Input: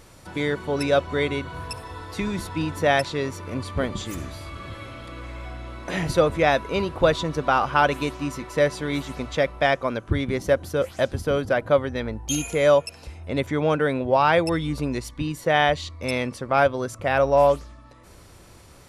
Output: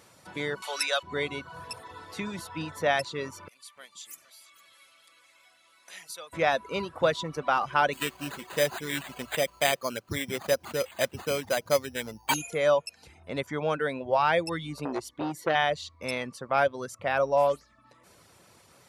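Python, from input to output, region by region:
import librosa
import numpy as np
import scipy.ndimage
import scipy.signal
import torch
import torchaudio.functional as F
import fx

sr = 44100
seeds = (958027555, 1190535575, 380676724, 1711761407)

y = fx.chain(x, sr, fx.highpass(hz=840.0, slope=12),
    fx.high_shelf(hz=2700.0, db=11.5),
    fx.band_squash(depth_pct=40), at=(0.62, 1.03))
y = fx.chain(y, sr, fx.differentiator(),
    fx.echo_single(ms=455, db=-17.5), at=(3.48, 6.33))
y = fx.chain(y, sr, fx.high_shelf_res(hz=2300.0, db=6.5, q=1.5),
    fx.resample_bad(factor=8, down='none', up='hold'), at=(7.93, 12.34))
y = fx.chain(y, sr, fx.peak_eq(hz=340.0, db=11.5, octaves=0.66),
    fx.transformer_sat(knee_hz=1000.0), at=(14.85, 15.55))
y = scipy.signal.sosfilt(scipy.signal.butter(2, 160.0, 'highpass', fs=sr, output='sos'), y)
y = fx.dereverb_blind(y, sr, rt60_s=0.55)
y = fx.peak_eq(y, sr, hz=310.0, db=-5.0, octaves=1.0)
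y = F.gain(torch.from_numpy(y), -4.0).numpy()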